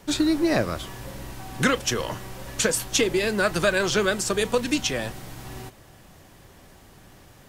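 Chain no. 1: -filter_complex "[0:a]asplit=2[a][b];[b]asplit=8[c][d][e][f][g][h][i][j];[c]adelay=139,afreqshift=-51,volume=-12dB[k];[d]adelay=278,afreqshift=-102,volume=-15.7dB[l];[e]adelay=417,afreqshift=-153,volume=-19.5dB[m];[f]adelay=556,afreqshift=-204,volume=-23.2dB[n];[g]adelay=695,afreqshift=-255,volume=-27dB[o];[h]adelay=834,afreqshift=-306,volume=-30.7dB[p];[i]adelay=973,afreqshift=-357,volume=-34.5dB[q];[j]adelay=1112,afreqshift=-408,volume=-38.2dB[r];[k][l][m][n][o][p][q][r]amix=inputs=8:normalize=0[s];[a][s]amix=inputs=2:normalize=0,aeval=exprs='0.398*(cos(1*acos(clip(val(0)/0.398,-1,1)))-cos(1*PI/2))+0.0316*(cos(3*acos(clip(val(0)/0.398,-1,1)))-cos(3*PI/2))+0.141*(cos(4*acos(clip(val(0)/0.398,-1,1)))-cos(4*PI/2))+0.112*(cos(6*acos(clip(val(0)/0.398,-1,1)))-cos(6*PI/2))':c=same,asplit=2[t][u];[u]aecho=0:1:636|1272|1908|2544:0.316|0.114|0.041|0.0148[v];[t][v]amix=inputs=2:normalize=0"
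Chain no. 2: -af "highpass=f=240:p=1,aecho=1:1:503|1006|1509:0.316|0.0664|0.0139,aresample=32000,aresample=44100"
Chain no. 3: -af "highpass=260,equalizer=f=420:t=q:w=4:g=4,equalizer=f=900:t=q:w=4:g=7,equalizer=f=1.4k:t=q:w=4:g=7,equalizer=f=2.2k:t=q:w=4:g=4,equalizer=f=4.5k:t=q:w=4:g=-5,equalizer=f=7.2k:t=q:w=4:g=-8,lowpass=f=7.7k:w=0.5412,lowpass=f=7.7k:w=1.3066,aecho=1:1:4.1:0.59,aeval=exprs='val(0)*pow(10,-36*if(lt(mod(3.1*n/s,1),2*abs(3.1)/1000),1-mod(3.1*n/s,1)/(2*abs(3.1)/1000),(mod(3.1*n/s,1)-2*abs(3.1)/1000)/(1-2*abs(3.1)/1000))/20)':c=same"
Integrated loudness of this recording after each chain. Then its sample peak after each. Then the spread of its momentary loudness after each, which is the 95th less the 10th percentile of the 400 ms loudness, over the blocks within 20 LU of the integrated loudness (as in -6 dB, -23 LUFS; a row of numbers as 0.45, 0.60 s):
-25.0, -25.0, -30.5 LUFS; -5.0, -9.5, -6.5 dBFS; 14, 13, 22 LU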